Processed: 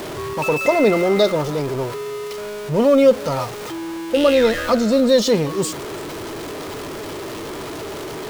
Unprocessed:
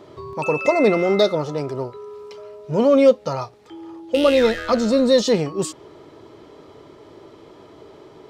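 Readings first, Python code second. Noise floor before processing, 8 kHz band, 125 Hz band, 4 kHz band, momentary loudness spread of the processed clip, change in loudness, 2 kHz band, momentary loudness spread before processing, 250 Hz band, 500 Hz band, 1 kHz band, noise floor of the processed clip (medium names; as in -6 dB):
-47 dBFS, +5.0 dB, +3.0 dB, +2.0 dB, 15 LU, +0.5 dB, +2.5 dB, 22 LU, +1.5 dB, +1.0 dB, +2.0 dB, -30 dBFS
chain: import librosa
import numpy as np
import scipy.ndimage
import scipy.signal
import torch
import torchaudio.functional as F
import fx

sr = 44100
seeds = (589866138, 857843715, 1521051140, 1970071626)

y = x + 0.5 * 10.0 ** (-25.5 / 20.0) * np.sign(x)
y = y + 10.0 ** (-21.5 / 20.0) * np.pad(y, (int(335 * sr / 1000.0), 0))[:len(y)]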